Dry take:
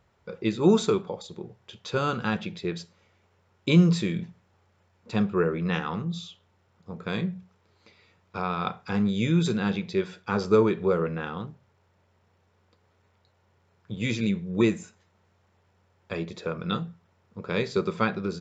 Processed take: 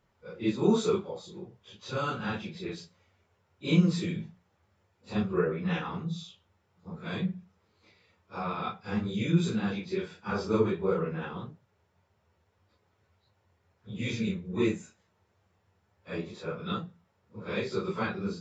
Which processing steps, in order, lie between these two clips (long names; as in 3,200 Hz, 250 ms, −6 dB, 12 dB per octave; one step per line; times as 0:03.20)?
random phases in long frames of 100 ms
level −4.5 dB